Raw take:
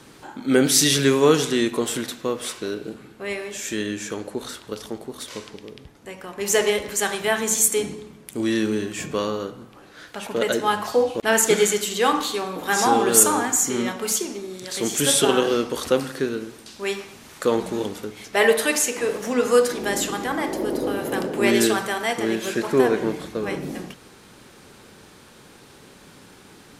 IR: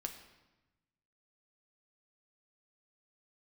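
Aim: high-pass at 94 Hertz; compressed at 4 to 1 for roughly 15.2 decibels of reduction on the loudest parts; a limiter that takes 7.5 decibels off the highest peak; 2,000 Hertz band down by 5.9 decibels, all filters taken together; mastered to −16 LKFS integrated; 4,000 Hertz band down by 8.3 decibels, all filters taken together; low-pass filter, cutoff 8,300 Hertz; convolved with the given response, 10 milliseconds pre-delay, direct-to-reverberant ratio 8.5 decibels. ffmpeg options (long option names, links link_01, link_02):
-filter_complex "[0:a]highpass=94,lowpass=8300,equalizer=frequency=2000:width_type=o:gain=-5.5,equalizer=frequency=4000:width_type=o:gain=-9,acompressor=threshold=-31dB:ratio=4,alimiter=level_in=1dB:limit=-24dB:level=0:latency=1,volume=-1dB,asplit=2[link_01][link_02];[1:a]atrim=start_sample=2205,adelay=10[link_03];[link_02][link_03]afir=irnorm=-1:irlink=0,volume=-7dB[link_04];[link_01][link_04]amix=inputs=2:normalize=0,volume=19dB"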